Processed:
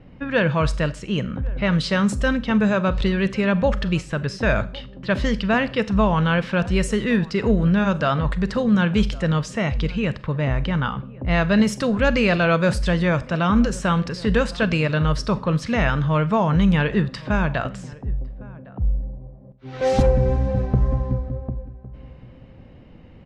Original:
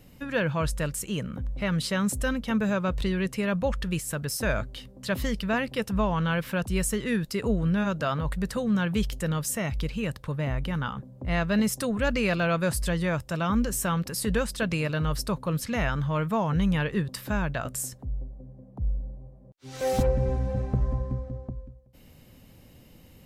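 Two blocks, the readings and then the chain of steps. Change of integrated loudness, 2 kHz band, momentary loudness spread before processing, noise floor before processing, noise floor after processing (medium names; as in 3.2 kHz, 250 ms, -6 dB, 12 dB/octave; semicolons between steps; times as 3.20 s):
+7.0 dB, +7.0 dB, 8 LU, -52 dBFS, -44 dBFS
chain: wow and flutter 23 cents; low-pass 5.6 kHz 12 dB/octave; level-controlled noise filter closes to 1.9 kHz, open at -20.5 dBFS; echo from a far wall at 190 m, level -21 dB; Schroeder reverb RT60 0.39 s, combs from 30 ms, DRR 15 dB; trim +7 dB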